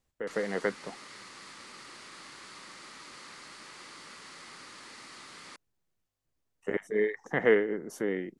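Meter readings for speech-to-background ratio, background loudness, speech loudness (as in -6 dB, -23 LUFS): 17.0 dB, -47.0 LUFS, -30.0 LUFS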